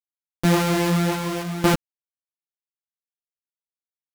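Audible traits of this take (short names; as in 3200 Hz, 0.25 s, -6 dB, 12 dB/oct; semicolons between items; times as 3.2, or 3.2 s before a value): a buzz of ramps at a fixed pitch in blocks of 256 samples; tremolo saw down 0.61 Hz, depth 90%; a quantiser's noise floor 6-bit, dither none; a shimmering, thickened sound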